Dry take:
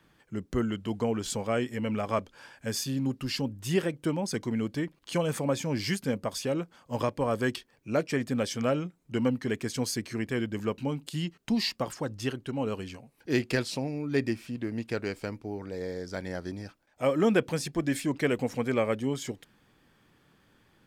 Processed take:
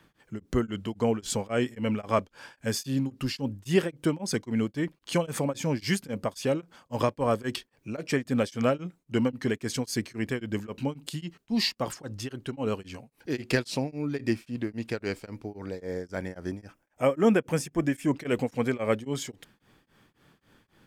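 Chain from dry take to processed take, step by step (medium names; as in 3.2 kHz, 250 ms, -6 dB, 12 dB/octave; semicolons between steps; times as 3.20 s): 15.81–18.14 s: peaking EQ 4.1 kHz -13 dB 0.44 oct; tremolo of two beating tones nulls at 3.7 Hz; trim +4 dB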